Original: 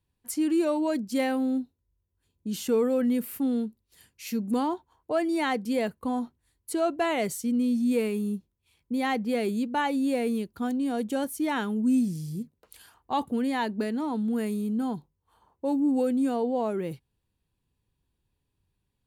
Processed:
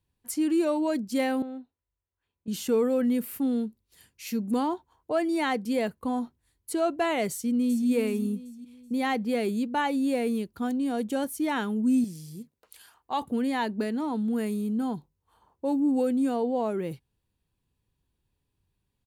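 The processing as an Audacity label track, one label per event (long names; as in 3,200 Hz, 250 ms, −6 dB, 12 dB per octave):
1.420000	2.480000	three-way crossover with the lows and the highs turned down lows −13 dB, under 560 Hz, highs −22 dB, over 3,100 Hz
7.310000	7.880000	delay throw 380 ms, feedback 40%, level −10 dB
12.040000	13.220000	low-shelf EQ 340 Hz −10 dB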